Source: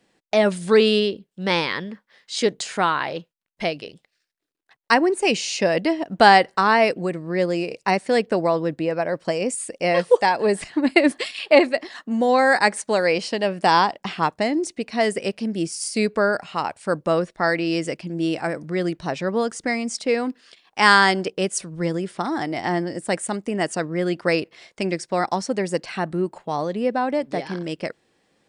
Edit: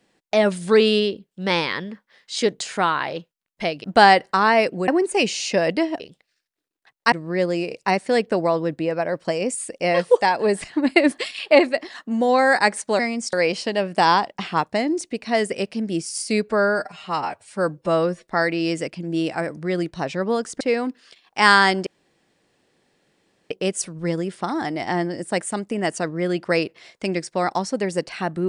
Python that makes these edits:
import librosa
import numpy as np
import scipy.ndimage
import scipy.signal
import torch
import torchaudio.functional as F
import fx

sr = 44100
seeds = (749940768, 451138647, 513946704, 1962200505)

y = fx.edit(x, sr, fx.swap(start_s=3.84, length_s=1.12, other_s=6.08, other_length_s=1.04),
    fx.stretch_span(start_s=16.15, length_s=1.19, factor=1.5),
    fx.move(start_s=19.67, length_s=0.34, to_s=12.99),
    fx.insert_room_tone(at_s=21.27, length_s=1.64), tone=tone)